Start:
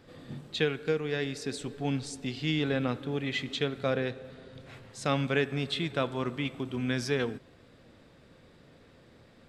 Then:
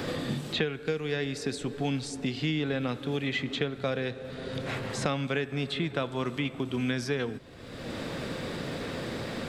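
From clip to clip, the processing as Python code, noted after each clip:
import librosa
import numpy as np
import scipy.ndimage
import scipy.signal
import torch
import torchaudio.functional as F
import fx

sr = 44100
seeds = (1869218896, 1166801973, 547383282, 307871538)

y = fx.band_squash(x, sr, depth_pct=100)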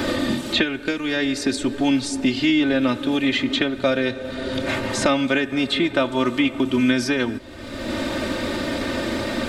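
y = x + 0.81 * np.pad(x, (int(3.3 * sr / 1000.0), 0))[:len(x)]
y = y * librosa.db_to_amplitude(8.5)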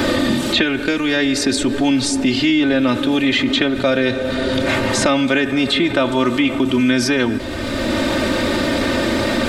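y = fx.env_flatten(x, sr, amount_pct=50)
y = y * librosa.db_to_amplitude(2.0)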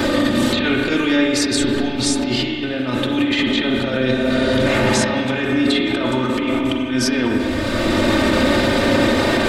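y = fx.over_compress(x, sr, threshold_db=-18.0, ratio=-0.5)
y = fx.rev_spring(y, sr, rt60_s=2.1, pass_ms=(31, 38), chirp_ms=30, drr_db=1.0)
y = y * librosa.db_to_amplitude(-1.5)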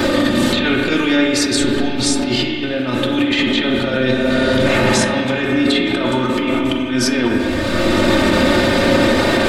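y = fx.comb_fb(x, sr, f0_hz=180.0, decay_s=0.29, harmonics='all', damping=0.0, mix_pct=60)
y = y * librosa.db_to_amplitude(8.5)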